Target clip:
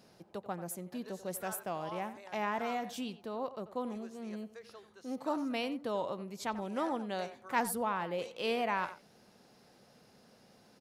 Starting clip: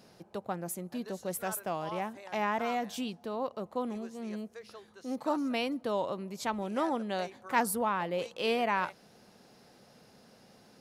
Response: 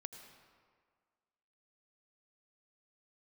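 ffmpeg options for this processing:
-filter_complex "[0:a]asplit=2[s0][s1];[s1]adelay=90,highpass=300,lowpass=3400,asoftclip=type=hard:threshold=0.0841,volume=0.224[s2];[s0][s2]amix=inputs=2:normalize=0,volume=0.668"

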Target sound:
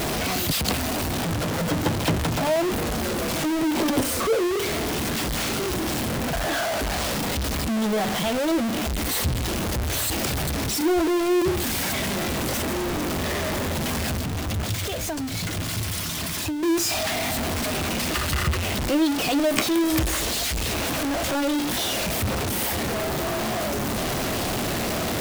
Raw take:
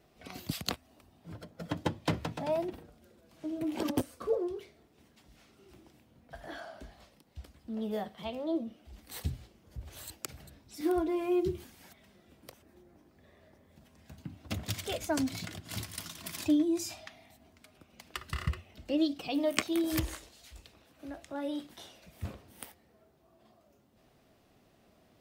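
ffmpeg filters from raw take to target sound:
-filter_complex "[0:a]aeval=exprs='val(0)+0.5*0.0708*sgn(val(0))':c=same,asettb=1/sr,asplit=3[s0][s1][s2];[s0]atrim=end=14.154[s3];[s1]atrim=start=14.15:end=16.63,asetpts=PTS-STARTPTS,afade=t=in:d=0.004:c=qsin,afade=t=out:st=2.476:d=0.004:c=qsin,acrossover=split=130[s4][s5];[s5]acompressor=threshold=0.0316:ratio=6[s6];[s4][s6]amix=inputs=2:normalize=0[s7];[s2]atrim=start=16.626[s8];[s3][s7]acrossfade=d=0.004:c1=hsin:c2=qsin[s9];[s9][s8]acrossfade=d=0.004:c1=qsin:c2=hsin,volume=1.41"

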